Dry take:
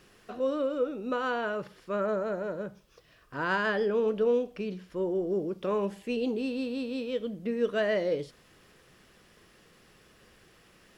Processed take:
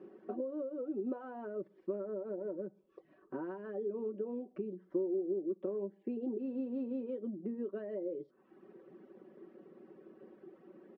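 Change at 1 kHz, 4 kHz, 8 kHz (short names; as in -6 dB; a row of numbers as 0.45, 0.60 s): -17.0 dB, under -30 dB, n/a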